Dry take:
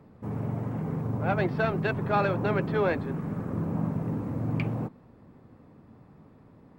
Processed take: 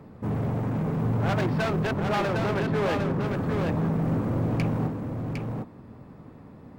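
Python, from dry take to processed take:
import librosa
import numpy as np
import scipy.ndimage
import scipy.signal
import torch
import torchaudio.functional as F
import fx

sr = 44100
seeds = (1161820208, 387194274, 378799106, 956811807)

p1 = fx.high_shelf(x, sr, hz=4000.0, db=-11.0, at=(1.85, 3.26))
p2 = fx.rider(p1, sr, range_db=3, speed_s=0.5)
p3 = p1 + (p2 * librosa.db_to_amplitude(-1.5))
p4 = np.clip(p3, -10.0 ** (-24.0 / 20.0), 10.0 ** (-24.0 / 20.0))
y = p4 + 10.0 ** (-4.5 / 20.0) * np.pad(p4, (int(756 * sr / 1000.0), 0))[:len(p4)]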